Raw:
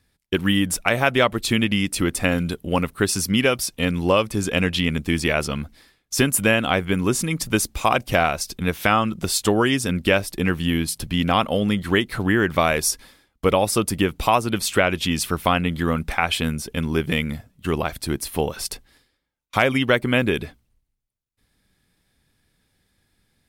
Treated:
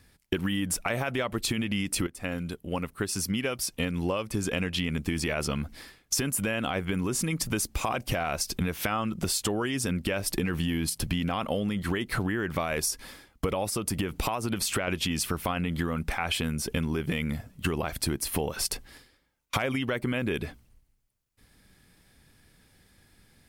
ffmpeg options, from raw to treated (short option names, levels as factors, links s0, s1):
-filter_complex "[0:a]asettb=1/sr,asplit=3[s0][s1][s2];[s0]atrim=end=10.264[s3];[s1]atrim=start=10.26:end=10.9,asetpts=PTS-STARTPTS,afade=t=in:d=0.004:c=qsin,afade=t=out:st=0.636:d=0.004:c=qsin,acontrast=28[s4];[s2]atrim=start=10.896[s5];[s3][s4]acrossfade=d=0.004:c1=hsin:c2=qsin[s6];[s6][s5]acrossfade=d=0.004:c1=qsin:c2=hsin,asettb=1/sr,asplit=3[s7][s8][s9];[s7]atrim=end=13.694[s10];[s8]atrim=start=13.69:end=14.88,asetpts=PTS-STARTPTS,afade=t=in:d=0.004:c=qsin,afade=t=out:st=1.186:d=0.004:c=qsin,acompressor=threshold=0.0501:ratio=3:attack=3.2:release=140:knee=1:detection=peak[s11];[s9]atrim=start=14.876[s12];[s10][s11]acrossfade=d=0.004:c1=hsin:c2=qsin[s13];[s13][s12]acrossfade=d=0.004:c1=qsin:c2=hsin,asplit=2[s14][s15];[s14]atrim=end=2.07,asetpts=PTS-STARTPTS,afade=t=out:st=2.066:d=0.004:c=hsin:silence=0.141254[s16];[s15]atrim=start=2.07,asetpts=PTS-STARTPTS,afade=t=in:d=3.21:c=qua:silence=0.141254[s17];[s16][s17]concat=n=2:v=0:a=1,equalizer=f=3700:t=o:w=0.27:g=-3.5,alimiter=limit=0.224:level=0:latency=1:release=24,acompressor=threshold=0.0251:ratio=12,volume=2.24"